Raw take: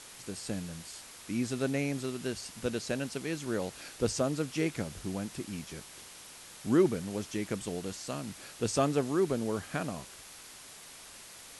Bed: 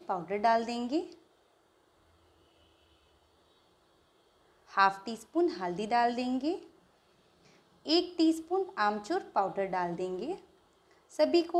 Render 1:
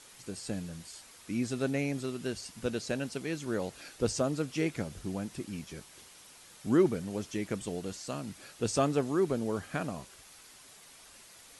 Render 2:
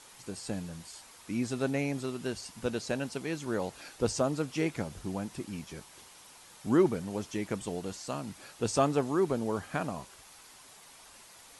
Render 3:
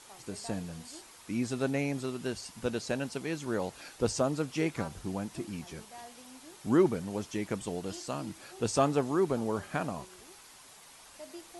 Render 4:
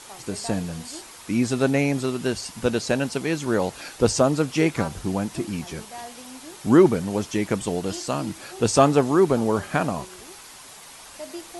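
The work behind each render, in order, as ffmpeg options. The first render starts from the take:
-af "afftdn=nr=6:nf=-50"
-af "equalizer=f=910:w=2:g=6"
-filter_complex "[1:a]volume=-21.5dB[a];[0:a][a]amix=inputs=2:normalize=0"
-af "volume=10dB,alimiter=limit=-3dB:level=0:latency=1"

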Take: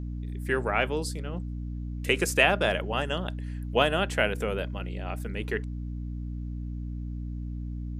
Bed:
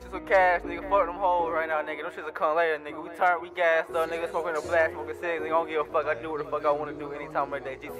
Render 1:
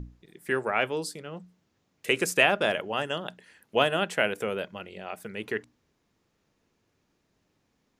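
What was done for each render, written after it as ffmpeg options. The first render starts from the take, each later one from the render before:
-af "bandreject=f=60:t=h:w=6,bandreject=f=120:t=h:w=6,bandreject=f=180:t=h:w=6,bandreject=f=240:t=h:w=6,bandreject=f=300:t=h:w=6"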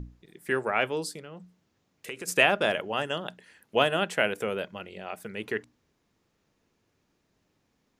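-filter_complex "[0:a]asplit=3[a][b][c];[a]afade=t=out:st=1.19:d=0.02[d];[b]acompressor=threshold=-40dB:ratio=2.5:attack=3.2:release=140:knee=1:detection=peak,afade=t=in:st=1.19:d=0.02,afade=t=out:st=2.27:d=0.02[e];[c]afade=t=in:st=2.27:d=0.02[f];[d][e][f]amix=inputs=3:normalize=0"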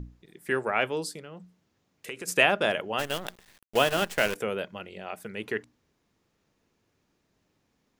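-filter_complex "[0:a]asplit=3[a][b][c];[a]afade=t=out:st=2.98:d=0.02[d];[b]acrusher=bits=6:dc=4:mix=0:aa=0.000001,afade=t=in:st=2.98:d=0.02,afade=t=out:st=4.34:d=0.02[e];[c]afade=t=in:st=4.34:d=0.02[f];[d][e][f]amix=inputs=3:normalize=0"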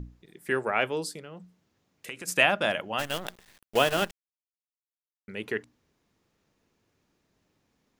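-filter_complex "[0:a]asettb=1/sr,asplit=3[a][b][c];[a]atrim=end=2.074[d];[b]atrim=start=2.07:end=3.14,asetpts=PTS-STARTPTS,afade=t=in:d=0.004:c=qsin,afade=t=out:st=1.066:d=0.004:c=qsin,equalizer=f=420:w=3.7:g=-9[e];[c]atrim=start=3.136[f];[d][e]acrossfade=d=0.004:c1=hsin:c2=qsin[g];[g][f]acrossfade=d=0.004:c1=qsin:c2=hsin,asplit=3[h][i][j];[h]atrim=end=4.11,asetpts=PTS-STARTPTS,afade=t=out:st=4.106:d=0.004:c=hsin[k];[i]atrim=start=4.11:end=5.28,asetpts=PTS-STARTPTS,volume=0[l];[j]atrim=start=5.28,asetpts=PTS-STARTPTS,afade=t=in:d=0.004:c=hsin[m];[k][l][m]concat=n=3:v=0:a=1"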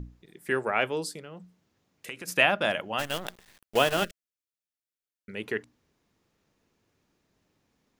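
-filter_complex "[0:a]asettb=1/sr,asplit=3[a][b][c];[a]atrim=end=2.164[d];[b]atrim=start=2.16:end=2.65,asetpts=PTS-STARTPTS,afade=t=in:d=0.004:c=qsin,afade=t=out:st=0.486:d=0.004:c=qsin,equalizer=f=7.8k:w=1.9:g=-7[e];[c]atrim=start=2.646[f];[d][e]acrossfade=d=0.004:c1=hsin:c2=qsin[g];[g][f]acrossfade=d=0.004:c1=qsin:c2=hsin,asplit=3[h][i][j];[h]afade=t=out:st=4.03:d=0.02[k];[i]asuperstop=centerf=890:order=12:qfactor=1.6,afade=t=in:st=4.03:d=0.02,afade=t=out:st=5.31:d=0.02[l];[j]afade=t=in:st=5.31:d=0.02[m];[k][l][m]amix=inputs=3:normalize=0"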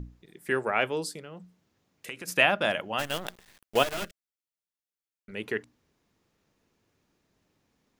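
-filter_complex "[0:a]asettb=1/sr,asplit=3[a][b][c];[a]atrim=end=3.834[d];[b]atrim=start=3.83:end=5.32,asetpts=PTS-STARTPTS,afade=t=in:d=0.004:c=qsin,afade=t=out:st=1.486:d=0.004:c=qsin,aeval=exprs='(tanh(31.6*val(0)+0.65)-tanh(0.65))/31.6':c=same[e];[c]atrim=start=5.316[f];[d][e]acrossfade=d=0.004:c1=hsin:c2=qsin[g];[g][f]acrossfade=d=0.004:c1=qsin:c2=hsin"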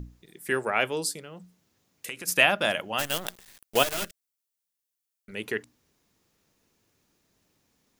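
-af "highshelf=f=4.9k:g=11"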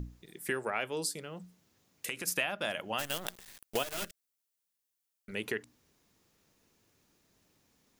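-af "acompressor=threshold=-31dB:ratio=4"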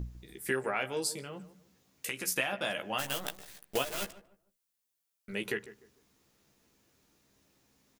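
-filter_complex "[0:a]asplit=2[a][b];[b]adelay=15,volume=-5.5dB[c];[a][c]amix=inputs=2:normalize=0,asplit=2[d][e];[e]adelay=150,lowpass=f=1.2k:p=1,volume=-14.5dB,asplit=2[f][g];[g]adelay=150,lowpass=f=1.2k:p=1,volume=0.31,asplit=2[h][i];[i]adelay=150,lowpass=f=1.2k:p=1,volume=0.31[j];[d][f][h][j]amix=inputs=4:normalize=0"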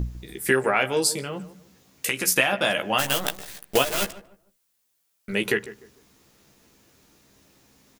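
-af "volume=11dB"

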